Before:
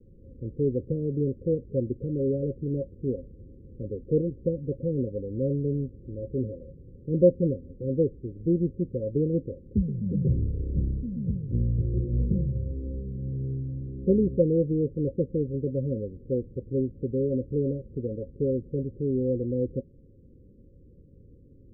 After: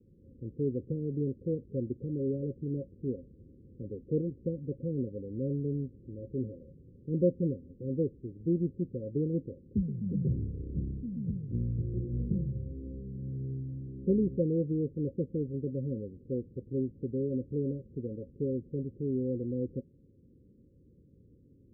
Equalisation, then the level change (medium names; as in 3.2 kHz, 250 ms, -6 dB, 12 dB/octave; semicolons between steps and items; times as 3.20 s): Gaussian low-pass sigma 19 samples; high-pass 190 Hz 6 dB/octave; 0.0 dB